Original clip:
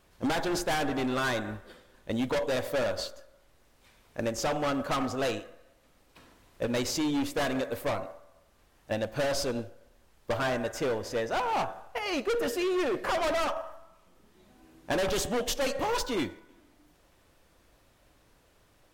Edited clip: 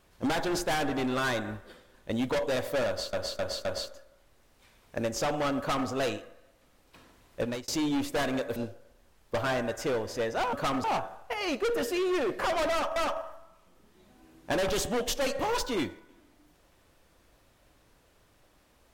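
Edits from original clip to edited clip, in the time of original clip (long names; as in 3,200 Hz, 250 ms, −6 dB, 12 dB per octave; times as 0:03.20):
0:02.87–0:03.13: repeat, 4 plays
0:04.80–0:05.11: duplicate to 0:11.49
0:06.64–0:06.90: fade out
0:07.78–0:09.52: remove
0:13.36–0:13.61: repeat, 2 plays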